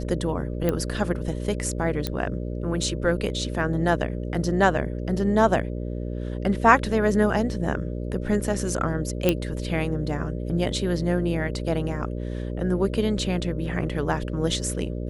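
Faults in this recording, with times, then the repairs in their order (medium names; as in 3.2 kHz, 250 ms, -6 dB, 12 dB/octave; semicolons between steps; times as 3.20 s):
buzz 60 Hz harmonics 10 -30 dBFS
0.69 s: pop -11 dBFS
2.07 s: pop -11 dBFS
9.29 s: pop -6 dBFS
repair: de-click; de-hum 60 Hz, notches 10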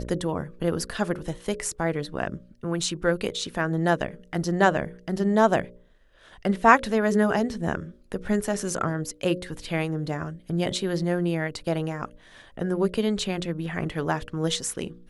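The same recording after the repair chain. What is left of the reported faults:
nothing left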